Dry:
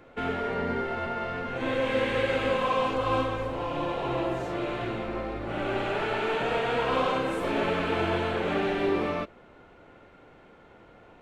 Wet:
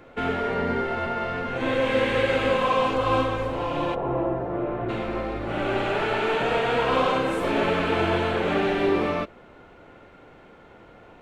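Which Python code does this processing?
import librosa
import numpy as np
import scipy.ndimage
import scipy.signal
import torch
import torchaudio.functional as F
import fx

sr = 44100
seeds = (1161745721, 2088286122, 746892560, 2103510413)

y = fx.lowpass(x, sr, hz=1100.0, slope=12, at=(3.94, 4.88), fade=0.02)
y = F.gain(torch.from_numpy(y), 4.0).numpy()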